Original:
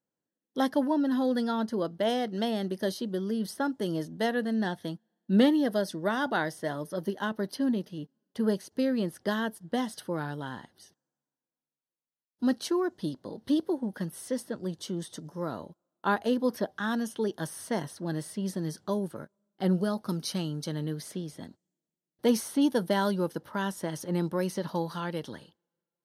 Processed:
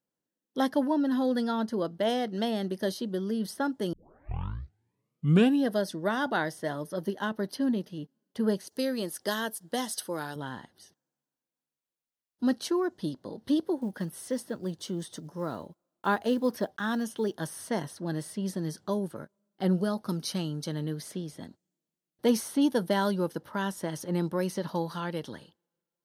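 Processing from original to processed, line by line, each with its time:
0:03.93: tape start 1.76 s
0:08.67–0:10.36: bass and treble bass −9 dB, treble +11 dB
0:13.77–0:17.39: one scale factor per block 7 bits

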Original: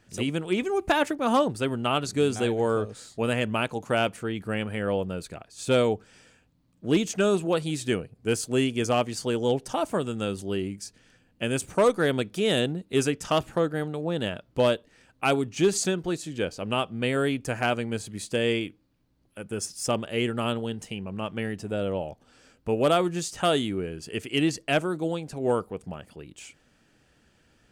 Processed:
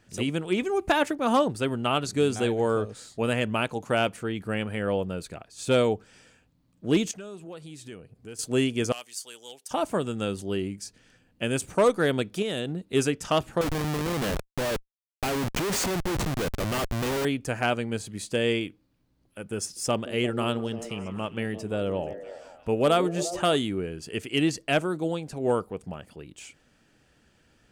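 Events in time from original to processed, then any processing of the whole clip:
0:07.11–0:08.39: downward compressor 2.5 to 1, threshold −46 dBFS
0:08.92–0:09.71: first difference
0:12.42–0:12.82: downward compressor 4 to 1, threshold −26 dBFS
0:13.61–0:17.25: comparator with hysteresis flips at −34 dBFS
0:19.59–0:23.56: echo through a band-pass that steps 173 ms, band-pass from 330 Hz, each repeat 0.7 octaves, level −8 dB

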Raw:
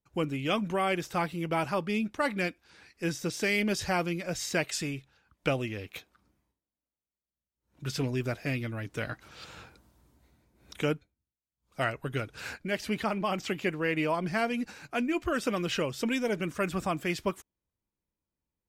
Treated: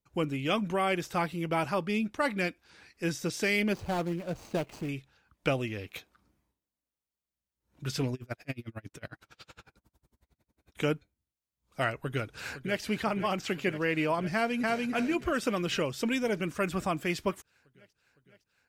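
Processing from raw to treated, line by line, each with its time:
0:03.73–0:04.89: running median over 25 samples
0:08.14–0:10.78: tremolo with a sine in dB 11 Hz, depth 35 dB
0:11.95–0:12.82: delay throw 510 ms, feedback 80%, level −12 dB
0:14.34–0:14.88: delay throw 290 ms, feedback 20%, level −1 dB

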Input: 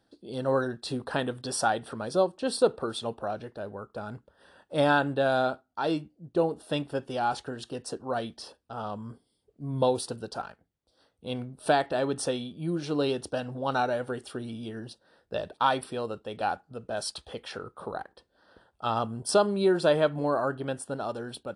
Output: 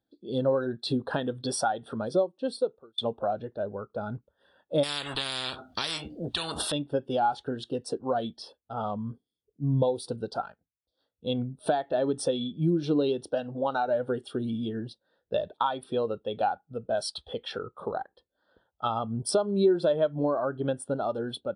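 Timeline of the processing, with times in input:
0:01.88–0:02.98: fade out
0:04.83–0:06.72: every bin compressed towards the loudest bin 10 to 1
0:13.23–0:13.88: low-shelf EQ 140 Hz −10.5 dB
whole clip: parametric band 3,500 Hz +5.5 dB 0.39 octaves; downward compressor 6 to 1, threshold −30 dBFS; every bin expanded away from the loudest bin 1.5 to 1; level +3 dB

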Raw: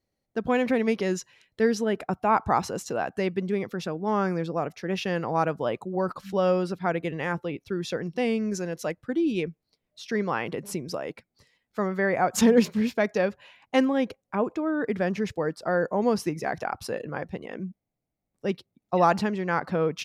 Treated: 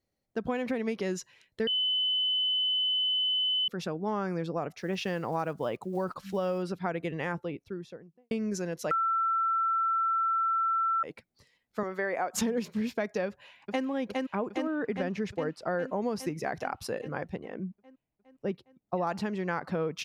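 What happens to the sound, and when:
0:01.67–0:03.68: beep over 3,020 Hz −16.5 dBFS
0:04.79–0:06.63: one scale factor per block 7 bits
0:07.17–0:08.31: fade out and dull
0:08.91–0:11.03: beep over 1,340 Hz −14 dBFS
0:11.83–0:12.33: high-pass filter 330 Hz
0:13.27–0:13.85: delay throw 410 ms, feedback 70%, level −4.5 dB
0:14.80–0:15.75: high-shelf EQ 9,100 Hz −10 dB
0:17.36–0:19.07: high-shelf EQ 2,400 Hz −11.5 dB
whole clip: downward compressor, threshold −25 dBFS; level −2 dB

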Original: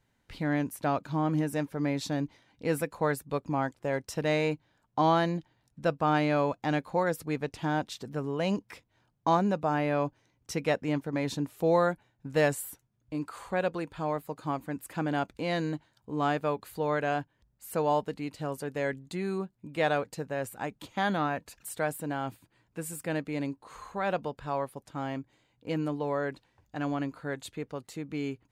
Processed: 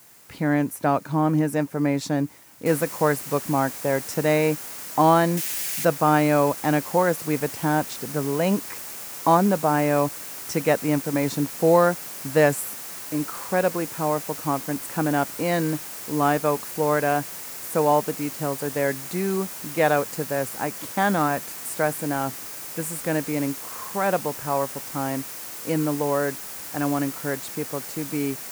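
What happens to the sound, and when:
0:02.66: noise floor change −58 dB −43 dB
0:05.37–0:05.85: high shelf with overshoot 1,600 Hz +8 dB, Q 1.5
whole clip: high-pass filter 110 Hz; parametric band 3,500 Hz −7 dB 0.91 octaves; level +7.5 dB

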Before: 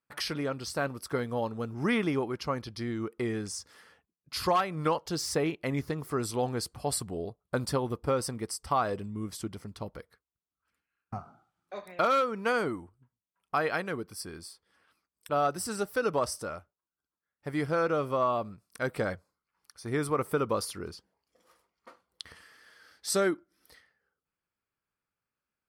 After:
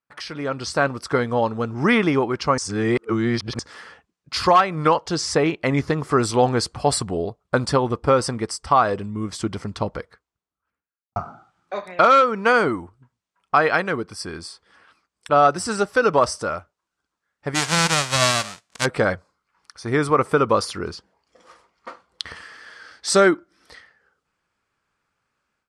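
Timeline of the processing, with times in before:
0:02.58–0:03.59: reverse
0:09.72–0:11.16: fade out and dull
0:17.54–0:18.84: spectral envelope flattened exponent 0.1
whole clip: low-pass filter 8,300 Hz 24 dB per octave; parametric band 1,200 Hz +4 dB 2 octaves; automatic gain control gain up to 16 dB; level −3 dB

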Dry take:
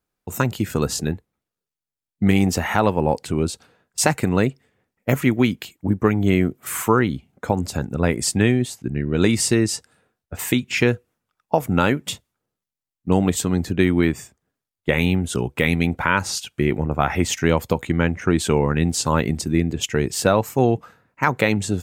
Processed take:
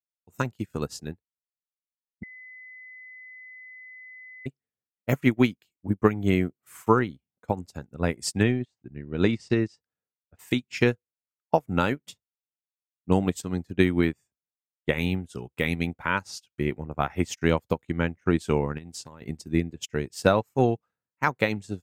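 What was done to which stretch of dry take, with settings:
0:02.23–0:04.46: beep over 2,020 Hz −23 dBFS
0:08.43–0:10.39: high-frequency loss of the air 130 metres
0:18.77–0:19.22: downward compressor 8 to 1, threshold −20 dBFS
whole clip: dynamic equaliser 5,200 Hz, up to +5 dB, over −42 dBFS, Q 3; expander for the loud parts 2.5 to 1, over −35 dBFS

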